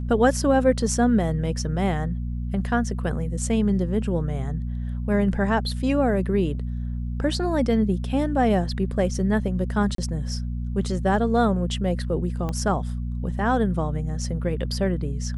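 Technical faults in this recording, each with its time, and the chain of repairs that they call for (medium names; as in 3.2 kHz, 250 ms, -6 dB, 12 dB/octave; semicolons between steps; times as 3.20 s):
hum 60 Hz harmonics 4 -28 dBFS
9.95–9.98 s: dropout 33 ms
12.49 s: pop -17 dBFS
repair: de-click; de-hum 60 Hz, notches 4; interpolate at 9.95 s, 33 ms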